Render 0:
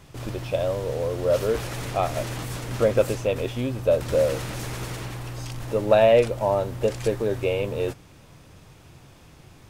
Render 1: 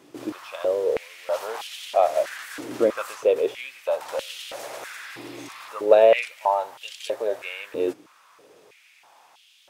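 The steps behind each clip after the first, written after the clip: spectral repair 4.86–5.66, 1700–5300 Hz before; stepped high-pass 3.1 Hz 310–3100 Hz; gain -3.5 dB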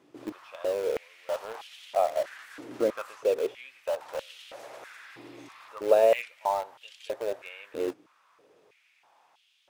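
high shelf 4600 Hz -9 dB; in parallel at -10 dB: bit-crush 4-bit; on the sum: gain -8 dB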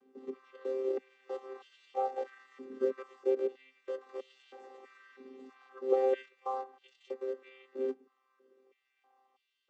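chord vocoder bare fifth, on C4; gain -5.5 dB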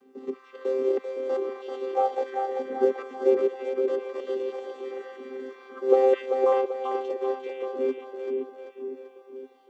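split-band echo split 480 Hz, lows 0.513 s, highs 0.389 s, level -4 dB; gain +8.5 dB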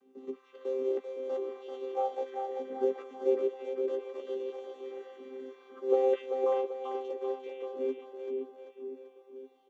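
doubler 15 ms -6 dB; gain -9 dB

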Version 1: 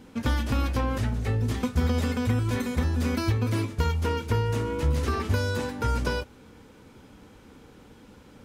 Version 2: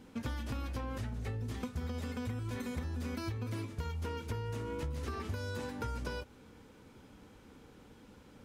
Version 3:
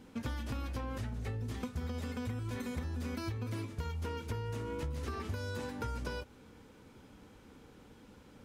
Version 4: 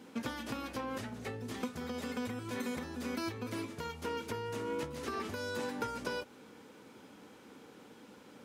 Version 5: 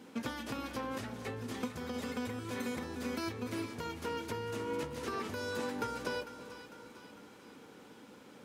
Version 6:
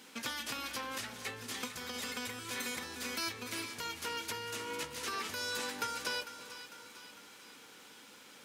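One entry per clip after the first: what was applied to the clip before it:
compressor, threshold -29 dBFS, peak gain reduction 10 dB; gain -6 dB
nothing audible
HPF 220 Hz 12 dB/oct; gain +4 dB
split-band echo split 910 Hz, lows 0.329 s, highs 0.45 s, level -12 dB
tilt shelf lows -9.5 dB, about 1100 Hz

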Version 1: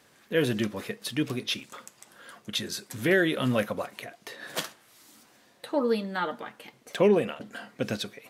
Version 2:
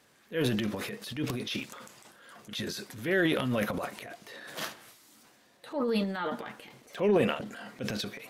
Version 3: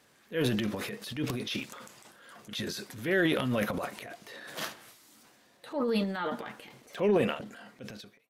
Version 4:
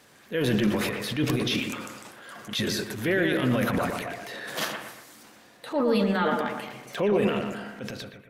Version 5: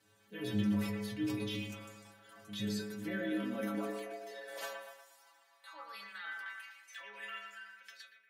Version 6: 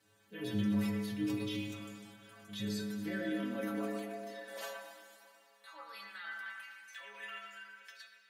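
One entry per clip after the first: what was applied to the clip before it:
dynamic EQ 8400 Hz, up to -5 dB, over -51 dBFS, Q 1.5; transient shaper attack -6 dB, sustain +10 dB; gain -3.5 dB
ending faded out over 1.26 s
limiter -24 dBFS, peak gain reduction 10 dB; analogue delay 0.117 s, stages 2048, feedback 43%, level -5 dB; gain +7.5 dB
high-pass sweep 100 Hz -> 1700 Hz, 2.31–6.19; metallic resonator 100 Hz, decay 0.6 s, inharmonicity 0.008; gain -1.5 dB
plate-style reverb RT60 2.5 s, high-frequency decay 1×, DRR 8.5 dB; gain -1 dB

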